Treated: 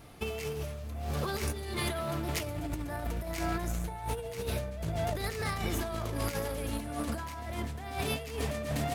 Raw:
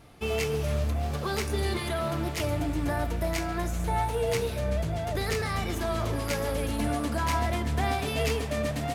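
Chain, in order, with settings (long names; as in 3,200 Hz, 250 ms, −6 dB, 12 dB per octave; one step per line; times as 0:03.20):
high-shelf EQ 12,000 Hz +8 dB
compressor whose output falls as the input rises −31 dBFS, ratio −0.5
level −2.5 dB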